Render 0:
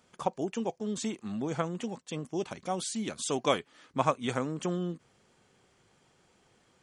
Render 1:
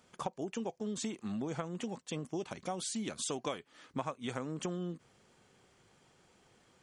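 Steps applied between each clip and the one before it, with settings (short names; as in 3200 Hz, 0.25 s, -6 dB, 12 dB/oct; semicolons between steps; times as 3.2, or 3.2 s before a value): compressor 6:1, threshold -34 dBFS, peak gain reduction 13.5 dB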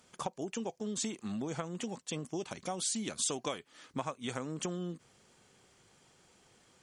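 bell 8700 Hz +6 dB 2.3 oct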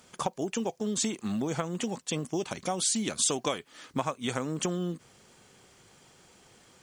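companded quantiser 8-bit; gain +6.5 dB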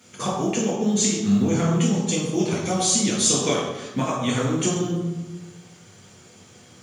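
reverb RT60 1.1 s, pre-delay 3 ms, DRR -4.5 dB; gain -4 dB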